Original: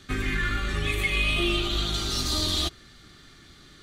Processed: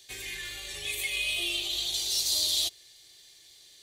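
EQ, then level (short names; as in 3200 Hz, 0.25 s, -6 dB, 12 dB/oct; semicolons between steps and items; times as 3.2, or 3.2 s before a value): tilt +4 dB/oct; fixed phaser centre 550 Hz, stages 4; -6.5 dB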